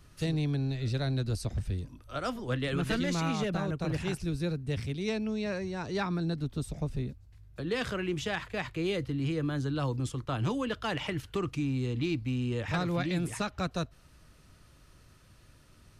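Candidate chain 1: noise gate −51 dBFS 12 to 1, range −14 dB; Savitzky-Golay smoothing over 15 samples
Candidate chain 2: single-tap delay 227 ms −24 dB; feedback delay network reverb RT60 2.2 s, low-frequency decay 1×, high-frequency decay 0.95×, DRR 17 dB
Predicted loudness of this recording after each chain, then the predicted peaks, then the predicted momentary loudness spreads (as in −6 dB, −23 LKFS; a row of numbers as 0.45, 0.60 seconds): −33.0, −32.5 LKFS; −20.0, −19.5 dBFS; 5, 5 LU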